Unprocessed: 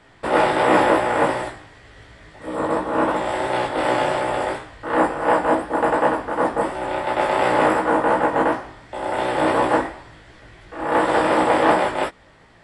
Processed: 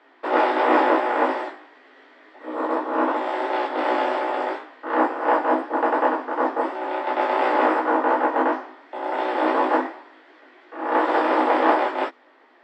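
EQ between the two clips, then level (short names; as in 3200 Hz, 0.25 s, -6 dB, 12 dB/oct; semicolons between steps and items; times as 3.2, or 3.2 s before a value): rippled Chebyshev high-pass 250 Hz, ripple 3 dB; air absorption 190 m; dynamic EQ 6000 Hz, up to +6 dB, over -50 dBFS, Q 1.3; 0.0 dB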